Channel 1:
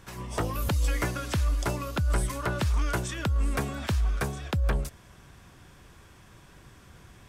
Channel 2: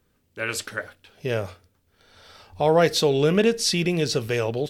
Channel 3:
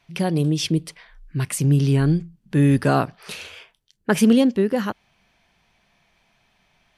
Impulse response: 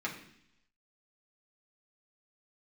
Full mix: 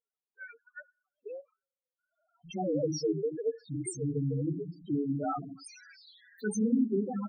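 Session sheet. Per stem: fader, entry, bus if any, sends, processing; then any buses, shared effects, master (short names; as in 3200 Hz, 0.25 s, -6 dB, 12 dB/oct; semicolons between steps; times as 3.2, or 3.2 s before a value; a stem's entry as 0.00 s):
-1.0 dB, 2.50 s, bus A, send -20 dB, spectral contrast lowered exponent 0.11; HPF 1100 Hz 24 dB/oct; fixed phaser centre 1700 Hz, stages 8
-9.5 dB, 0.00 s, no bus, send -20.5 dB, sine-wave speech; reverb removal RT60 1.4 s
+1.5 dB, 2.35 s, bus A, send -8 dB, tilt +3.5 dB/oct; notches 60/120/180 Hz
bus A: 0.0 dB, compressor 5:1, threshold -30 dBFS, peak gain reduction 17 dB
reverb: on, RT60 0.70 s, pre-delay 3 ms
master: envelope phaser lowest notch 340 Hz, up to 3100 Hz, full sweep at -27 dBFS; AM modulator 180 Hz, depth 40%; loudest bins only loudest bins 4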